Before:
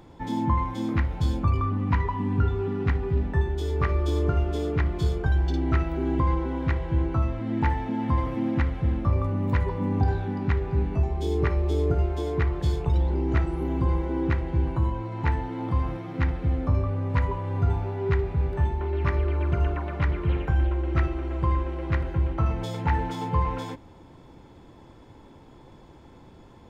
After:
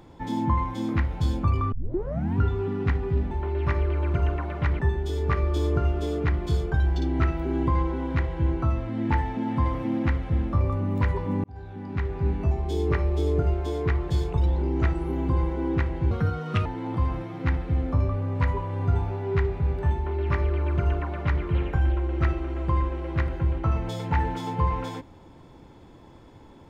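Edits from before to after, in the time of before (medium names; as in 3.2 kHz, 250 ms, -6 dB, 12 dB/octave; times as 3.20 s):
1.72 s: tape start 0.66 s
9.96–10.82 s: fade in
14.63–15.40 s: speed 141%
18.69–20.17 s: copy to 3.31 s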